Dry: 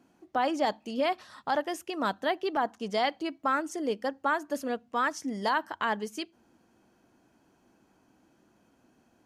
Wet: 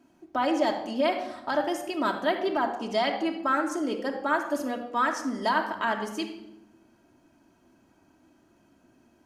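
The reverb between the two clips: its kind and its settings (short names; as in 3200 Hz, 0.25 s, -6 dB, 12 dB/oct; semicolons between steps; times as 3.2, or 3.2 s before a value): shoebox room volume 3700 m³, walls furnished, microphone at 2.8 m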